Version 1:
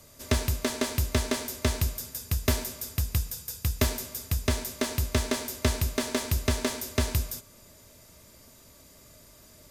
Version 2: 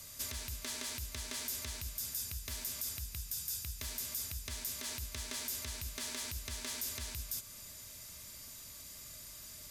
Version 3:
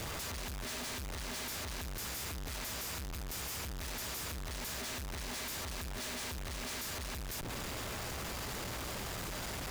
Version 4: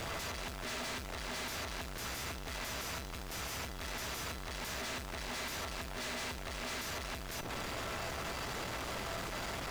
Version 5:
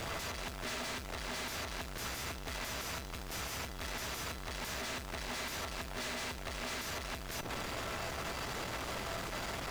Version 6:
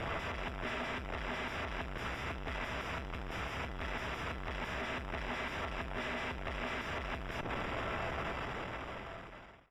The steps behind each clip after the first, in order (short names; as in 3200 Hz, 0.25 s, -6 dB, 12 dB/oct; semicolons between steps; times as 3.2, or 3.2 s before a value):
compressor 5:1, threshold -36 dBFS, peak gain reduction 15.5 dB; limiter -31.5 dBFS, peak gain reduction 11 dB; passive tone stack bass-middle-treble 5-5-5; gain +12 dB
compressor 4:1, threshold -42 dBFS, peak gain reduction 6.5 dB; buzz 60 Hz, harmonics 3, -66 dBFS -5 dB/oct; Schmitt trigger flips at -48 dBFS; gain +6 dB
requantised 10-bit, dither triangular; overdrive pedal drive 14 dB, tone 3300 Hz, clips at -35 dBFS; resonator 670 Hz, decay 0.34 s, mix 70%; gain +11 dB
transient shaper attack +6 dB, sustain -3 dB
ending faded out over 1.52 s; polynomial smoothing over 25 samples; gain +2.5 dB